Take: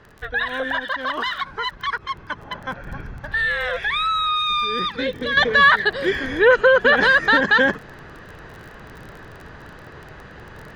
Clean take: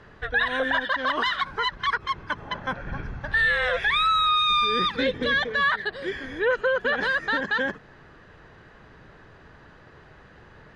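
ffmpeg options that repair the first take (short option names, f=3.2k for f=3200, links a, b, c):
-af "adeclick=t=4,asetnsamples=n=441:p=0,asendcmd='5.37 volume volume -9.5dB',volume=0dB"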